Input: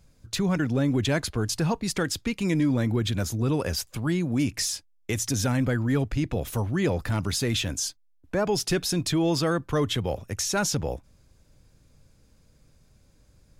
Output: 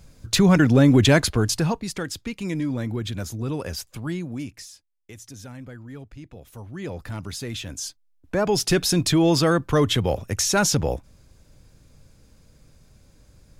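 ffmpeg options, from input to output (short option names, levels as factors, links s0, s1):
-af "volume=29.9,afade=t=out:st=1.09:d=0.81:silence=0.251189,afade=t=out:st=4.12:d=0.54:silence=0.251189,afade=t=in:st=6.49:d=0.55:silence=0.354813,afade=t=in:st=7.64:d=1.18:silence=0.266073"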